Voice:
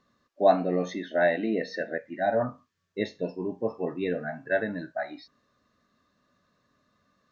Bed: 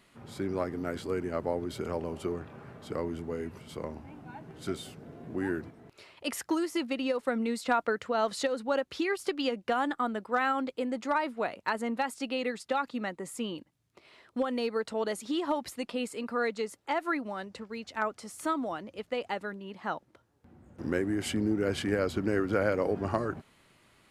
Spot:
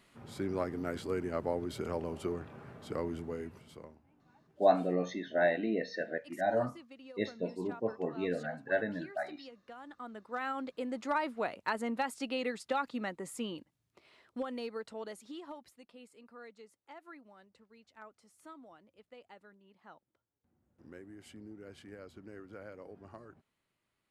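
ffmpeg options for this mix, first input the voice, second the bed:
-filter_complex "[0:a]adelay=4200,volume=0.562[s0];[1:a]volume=5.96,afade=t=out:st=3.18:d=0.82:silence=0.11885,afade=t=in:st=9.83:d=1.4:silence=0.125893,afade=t=out:st=13.26:d=2.5:silence=0.125893[s1];[s0][s1]amix=inputs=2:normalize=0"

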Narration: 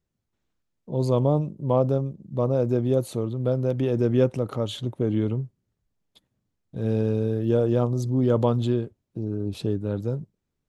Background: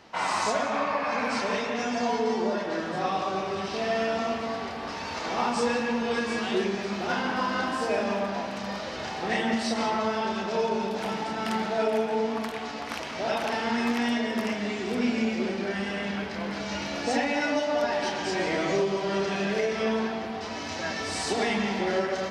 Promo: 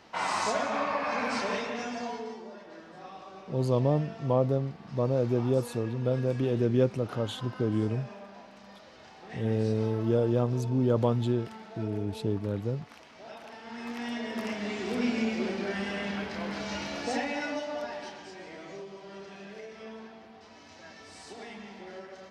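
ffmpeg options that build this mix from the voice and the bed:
-filter_complex "[0:a]adelay=2600,volume=0.631[s0];[1:a]volume=4.22,afade=t=out:st=1.44:d=0.99:silence=0.177828,afade=t=in:st=13.63:d=1.23:silence=0.177828,afade=t=out:st=16.67:d=1.67:silence=0.177828[s1];[s0][s1]amix=inputs=2:normalize=0"

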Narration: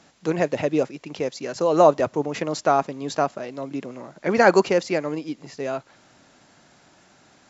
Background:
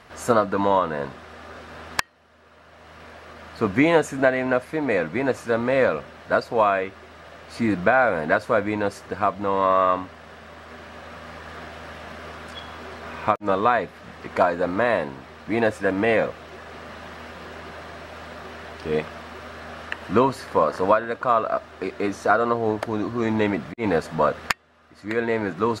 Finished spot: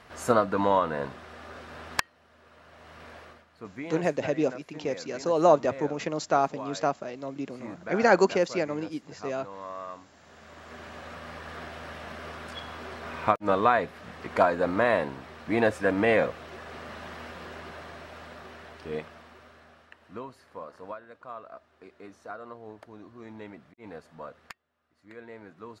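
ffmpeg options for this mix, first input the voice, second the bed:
-filter_complex "[0:a]adelay=3650,volume=0.596[s0];[1:a]volume=5.01,afade=t=out:st=3.2:d=0.25:silence=0.149624,afade=t=in:st=10.08:d=0.77:silence=0.133352,afade=t=out:st=17.17:d=2.71:silence=0.112202[s1];[s0][s1]amix=inputs=2:normalize=0"

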